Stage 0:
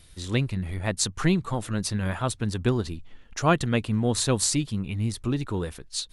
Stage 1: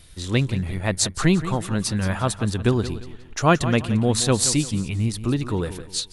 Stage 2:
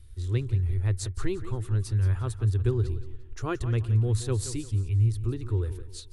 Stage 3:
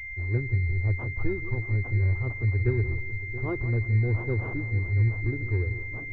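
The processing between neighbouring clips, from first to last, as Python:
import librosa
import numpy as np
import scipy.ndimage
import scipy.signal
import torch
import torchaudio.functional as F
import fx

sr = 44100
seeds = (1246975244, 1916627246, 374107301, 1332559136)

y1 = fx.echo_feedback(x, sr, ms=174, feedback_pct=34, wet_db=-13)
y1 = F.gain(torch.from_numpy(y1), 4.0).numpy()
y2 = fx.curve_eq(y1, sr, hz=(110.0, 170.0, 390.0, 600.0, 1300.0, 2500.0, 6100.0, 10000.0), db=(0, -28, -8, -24, -17, -20, -20, -17))
y2 = F.gain(torch.from_numpy(y2), 3.0).numpy()
y3 = fx.echo_feedback(y2, sr, ms=677, feedback_pct=38, wet_db=-13)
y3 = fx.pwm(y3, sr, carrier_hz=2100.0)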